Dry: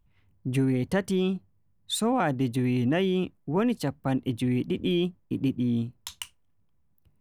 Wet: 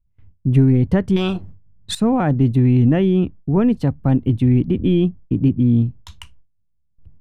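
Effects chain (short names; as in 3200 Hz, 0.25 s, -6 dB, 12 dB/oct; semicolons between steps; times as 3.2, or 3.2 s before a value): gate with hold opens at -54 dBFS; RIAA curve playback; 1.16–1.95 spectral compressor 2:1; gain +3 dB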